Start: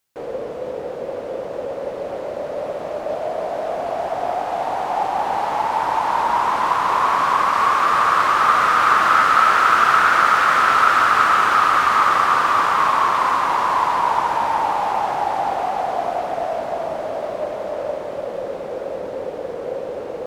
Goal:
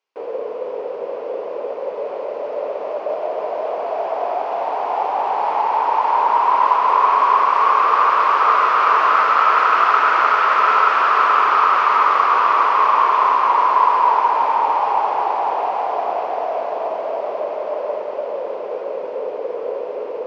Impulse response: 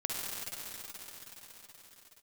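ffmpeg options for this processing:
-filter_complex "[0:a]highpass=350,equalizer=frequency=430:width_type=q:width=4:gain=9,equalizer=frequency=620:width_type=q:width=4:gain=3,equalizer=frequency=1000:width_type=q:width=4:gain=8,equalizer=frequency=1700:width_type=q:width=4:gain=-3,equalizer=frequency=2500:width_type=q:width=4:gain=4,equalizer=frequency=3800:width_type=q:width=4:gain=-5,lowpass=frequency=5000:width=0.5412,lowpass=frequency=5000:width=1.3066,asplit=2[link_01][link_02];[1:a]atrim=start_sample=2205[link_03];[link_02][link_03]afir=irnorm=-1:irlink=0,volume=-7.5dB[link_04];[link_01][link_04]amix=inputs=2:normalize=0,volume=-6dB"

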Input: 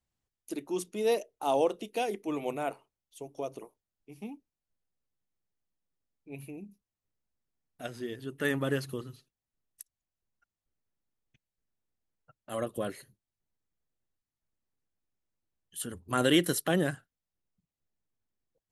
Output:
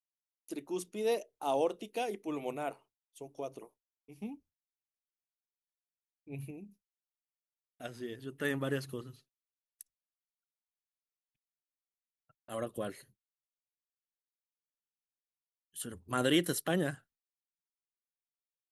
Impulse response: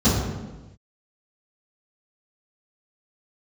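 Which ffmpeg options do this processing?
-filter_complex "[0:a]asettb=1/sr,asplit=3[link_01][link_02][link_03];[link_01]atrim=end=4.214[link_04];[link_02]atrim=start=4.21:end=6.51,asetpts=PTS-STARTPTS,afade=type=in:duration=0.004:curve=qsin,afade=type=out:start_time=2.296:duration=0.004:curve=qsin,equalizer=frequency=77:width_type=o:width=2:gain=14[link_05];[link_03]atrim=start=6.506[link_06];[link_04][link_05]acrossfade=duration=0.004:curve1=hsin:curve2=qsin[link_07];[link_07][link_06]acrossfade=duration=0.004:curve1=qsin:curve2=hsin,agate=range=-33dB:threshold=-54dB:ratio=3:detection=peak,volume=-4dB"

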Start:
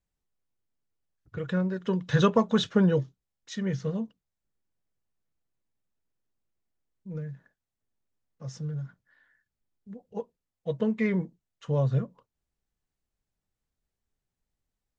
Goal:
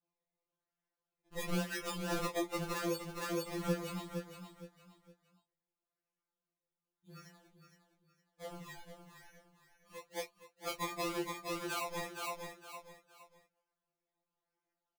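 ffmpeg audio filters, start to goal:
ffmpeg -i in.wav -filter_complex "[0:a]flanger=delay=8.1:depth=2.6:regen=-22:speed=1.7:shape=triangular,adynamicequalizer=threshold=0.00398:dfrequency=1200:dqfactor=1:tfrequency=1200:tqfactor=1:attack=5:release=100:ratio=0.375:range=3.5:mode=boostabove:tftype=bell,highpass=430,lowpass=4700,asettb=1/sr,asplit=3[link_01][link_02][link_03];[link_01]atrim=end=3.724[link_04];[link_02]atrim=start=3.72:end=7.26,asetpts=PTS-STARTPTS,afade=type=in:duration=0.004:curve=qsin,afade=type=out:start_time=3.536:duration=0.004:curve=qsin,equalizer=frequency=570:width_type=o:width=1.2:gain=-14[link_05];[link_03]atrim=start=7.256[link_06];[link_04][link_05]acrossfade=duration=0.004:curve1=hsin:curve2=qsin[link_07];[link_07][link_06]acrossfade=duration=0.004:curve1=qsin:curve2=hsin,acrusher=samples=21:mix=1:aa=0.000001:lfo=1:lforange=21:lforate=0.94,flanger=delay=17.5:depth=7.6:speed=0.82,aecho=1:1:463|926|1389:0.355|0.106|0.0319,acompressor=threshold=-40dB:ratio=20,tremolo=f=95:d=0.4,afftfilt=real='re*2.83*eq(mod(b,8),0)':imag='im*2.83*eq(mod(b,8),0)':win_size=2048:overlap=0.75,volume=13.5dB" out.wav

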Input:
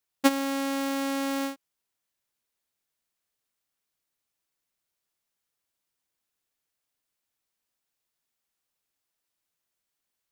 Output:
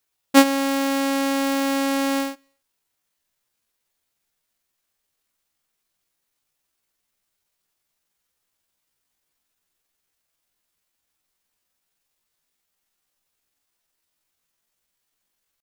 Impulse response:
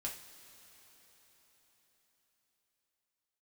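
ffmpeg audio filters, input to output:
-filter_complex "[0:a]atempo=0.66,asplit=2[link_01][link_02];[link_02]asubboost=boost=8.5:cutoff=140[link_03];[1:a]atrim=start_sample=2205,afade=type=out:start_time=0.33:duration=0.01,atrim=end_sample=14994[link_04];[link_03][link_04]afir=irnorm=-1:irlink=0,volume=-18dB[link_05];[link_01][link_05]amix=inputs=2:normalize=0,volume=6.5dB"

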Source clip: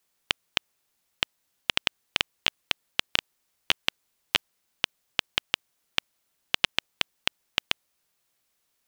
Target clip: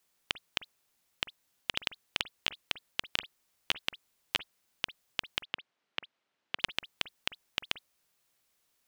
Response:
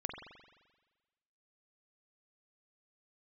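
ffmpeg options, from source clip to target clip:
-filter_complex "[0:a]alimiter=limit=-8dB:level=0:latency=1:release=79,asettb=1/sr,asplit=3[link_01][link_02][link_03];[link_01]atrim=end=5.434[link_04];[link_02]atrim=start=5.43:end=6.59,asetpts=PTS-STARTPTS,afade=type=in:duration=0.004:curve=qsin,afade=type=out:start_time=1.156:duration=0.004:curve=qsin,highpass=170,lowpass=3200[link_05];[link_03]atrim=start=6.586[link_06];[link_04][link_05]acrossfade=duration=0.004:curve1=hsin:curve2=qsin[link_07];[link_07][link_06]acrossfade=duration=0.004:curve1=qsin:curve2=hsin,asplit=2[link_08][link_09];[1:a]atrim=start_sample=2205,atrim=end_sample=3528[link_10];[link_09][link_10]afir=irnorm=-1:irlink=0,volume=-5.5dB[link_11];[link_08][link_11]amix=inputs=2:normalize=0,volume=-3.5dB"

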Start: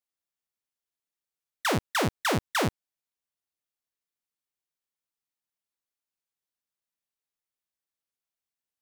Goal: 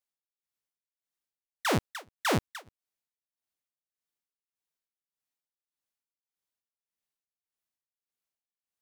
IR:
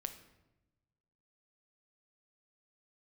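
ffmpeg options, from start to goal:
-af "tremolo=f=1.7:d=0.99"

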